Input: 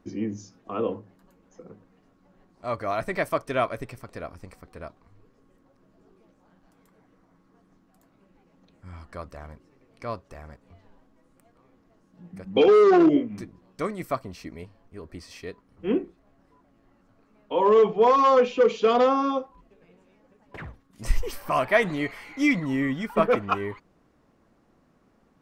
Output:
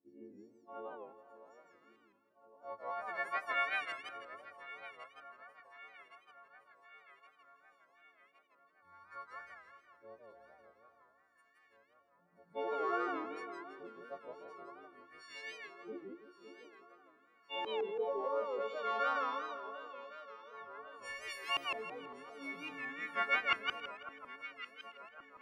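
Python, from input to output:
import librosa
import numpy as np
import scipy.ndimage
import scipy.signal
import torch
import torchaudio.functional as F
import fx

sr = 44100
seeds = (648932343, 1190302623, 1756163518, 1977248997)

y = fx.freq_snap(x, sr, grid_st=4)
y = np.diff(y, prepend=0.0)
y = fx.filter_lfo_lowpass(y, sr, shape='saw_up', hz=0.51, low_hz=340.0, high_hz=2700.0, q=2.2)
y = fx.echo_alternate(y, sr, ms=558, hz=1400.0, feedback_pct=75, wet_db=-11.5)
y = fx.echo_warbled(y, sr, ms=164, feedback_pct=32, rate_hz=2.8, cents=186, wet_db=-3.5)
y = F.gain(torch.from_numpy(y), -1.0).numpy()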